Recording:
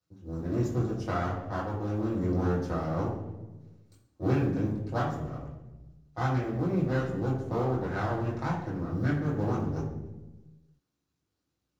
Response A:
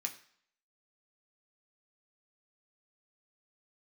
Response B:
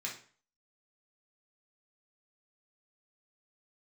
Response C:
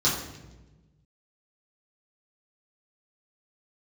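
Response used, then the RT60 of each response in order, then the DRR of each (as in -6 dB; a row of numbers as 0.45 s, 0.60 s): C; 0.60 s, 0.45 s, 1.1 s; 2.0 dB, -3.5 dB, -8.0 dB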